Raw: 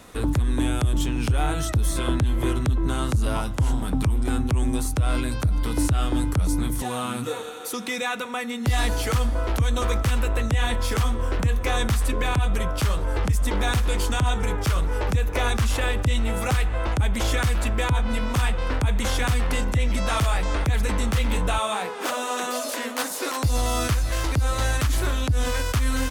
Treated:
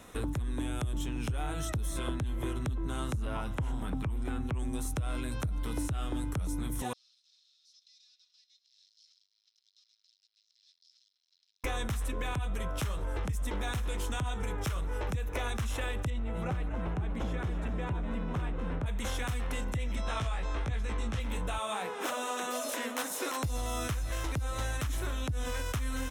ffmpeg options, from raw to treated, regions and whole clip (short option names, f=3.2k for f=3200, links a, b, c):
-filter_complex "[0:a]asettb=1/sr,asplit=3[a][b][c];[a]atrim=end=3.154[d];[b]atrim=start=3.15:end=4.59,asetpts=PTS-STARTPTS,afade=t=in:d=0.004:c=qsin,afade=t=out:st=1.436:d=0.004:c=qsin,acrossover=split=2900[e][f];[f]acompressor=threshold=-54dB:ratio=4:attack=1:release=60[g];[e][g]amix=inputs=2:normalize=0,highshelf=f=2.5k:g=7.5[h];[c]atrim=start=4.586[i];[d][h]acrossfade=d=0.004:c1=hsin:c2=qsin[j];[j][i]acrossfade=d=0.004:c1=qsin:c2=hsin,asettb=1/sr,asplit=3[k][l][m];[k]atrim=end=6.934[n];[l]atrim=start=6.93:end=11.64,asetpts=PTS-STARTPTS,afade=t=in:d=0.004:c=qsin,afade=t=out:st=4.706:d=0.004:c=qsin,aeval=exprs='(tanh(89.1*val(0)+0.75)-tanh(0.75))/89.1':c=same,asuperpass=centerf=4700:order=4:qfactor=3.8[o];[m]atrim=start=11.636[p];[n][o]acrossfade=d=0.004:c1=hsin:c2=qsin[q];[q][p]acrossfade=d=0.004:c1=qsin:c2=hsin,asettb=1/sr,asplit=3[r][s][t];[r]atrim=end=16.104[u];[s]atrim=start=16.1:end=18.86,asetpts=PTS-STARTPTS,afade=t=in:d=0.004:c=qsin,afade=t=out:st=2.756:d=0.004:c=qsin,lowpass=f=1.2k:p=1,asplit=6[v][w][x][y][z][aa];[w]adelay=247,afreqshift=120,volume=-9.5dB[ab];[x]adelay=494,afreqshift=240,volume=-15.9dB[ac];[y]adelay=741,afreqshift=360,volume=-22.3dB[ad];[z]adelay=988,afreqshift=480,volume=-28.6dB[ae];[aa]adelay=1235,afreqshift=600,volume=-35dB[af];[v][ab][ac][ad][ae][af]amix=inputs=6:normalize=0,atrim=end_sample=121716[ag];[t]atrim=start=18.856[ah];[u][ag]acrossfade=d=0.004:c1=hsin:c2=qsin[ai];[ai][ah]acrossfade=d=0.004:c1=qsin:c2=hsin,asettb=1/sr,asplit=3[aj][ak][al];[aj]atrim=end=19.954[am];[ak]atrim=start=19.95:end=21.2,asetpts=PTS-STARTPTS,afade=t=in:d=0.004:c=qsin,afade=t=out:st=1.246:d=0.004:c=qsin,lowpass=6.9k,asplit=2[an][ao];[ao]adelay=18,volume=-3dB[ap];[an][ap]amix=inputs=2:normalize=0,atrim=end_sample=55125[aq];[al]atrim=start=21.196[ar];[am][aq]acrossfade=d=0.004:c1=hsin:c2=qsin[as];[as][ar]acrossfade=d=0.004:c1=qsin:c2=hsin,bandreject=f=4.6k:w=6,acompressor=threshold=-25dB:ratio=6,volume=-5dB"